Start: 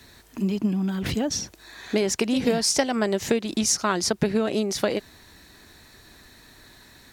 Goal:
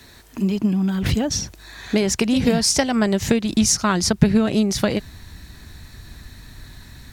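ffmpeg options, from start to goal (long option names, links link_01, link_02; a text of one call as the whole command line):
ffmpeg -i in.wav -af "asubboost=boost=5.5:cutoff=170,volume=4dB" out.wav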